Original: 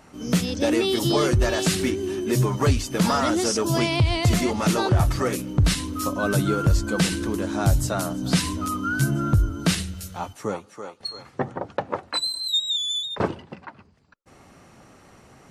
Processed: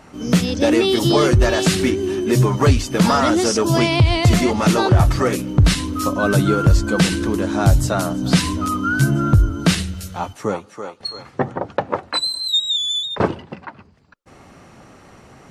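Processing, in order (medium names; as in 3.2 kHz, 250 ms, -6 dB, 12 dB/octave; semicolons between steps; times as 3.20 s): treble shelf 7.3 kHz -6.5 dB; trim +6 dB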